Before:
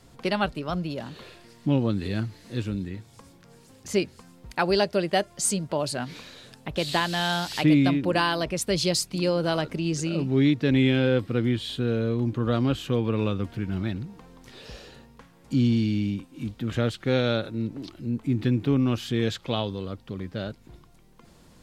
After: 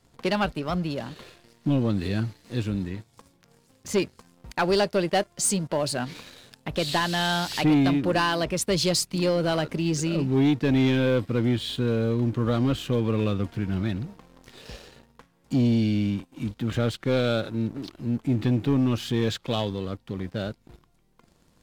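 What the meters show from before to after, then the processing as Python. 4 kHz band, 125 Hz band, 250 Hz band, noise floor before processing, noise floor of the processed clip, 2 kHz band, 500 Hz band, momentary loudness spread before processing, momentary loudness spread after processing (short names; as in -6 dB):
+0.5 dB, +0.5 dB, +0.5 dB, -54 dBFS, -63 dBFS, 0.0 dB, +0.5 dB, 14 LU, 12 LU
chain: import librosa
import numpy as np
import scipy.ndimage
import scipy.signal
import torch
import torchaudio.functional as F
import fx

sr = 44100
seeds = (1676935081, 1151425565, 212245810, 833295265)

y = fx.leveller(x, sr, passes=2)
y = y * 10.0 ** (-5.5 / 20.0)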